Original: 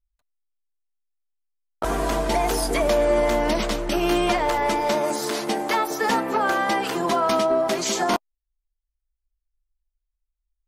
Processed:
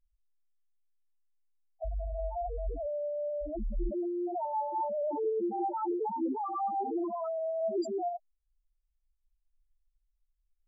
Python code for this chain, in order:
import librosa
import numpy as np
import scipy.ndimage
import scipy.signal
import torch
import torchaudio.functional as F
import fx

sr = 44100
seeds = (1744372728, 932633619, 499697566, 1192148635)

y = fx.peak_eq(x, sr, hz=2300.0, db=-13.0, octaves=0.98)
y = fx.over_compress(y, sr, threshold_db=-28.0, ratio=-1.0)
y = fx.spec_topn(y, sr, count=2)